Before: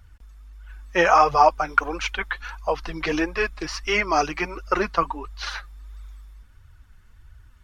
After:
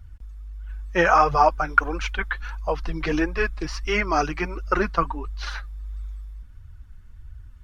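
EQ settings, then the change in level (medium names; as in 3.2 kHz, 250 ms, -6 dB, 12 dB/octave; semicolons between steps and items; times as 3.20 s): bass shelf 280 Hz +11.5 dB; dynamic bell 1.5 kHz, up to +6 dB, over -34 dBFS, Q 2.4; -4.0 dB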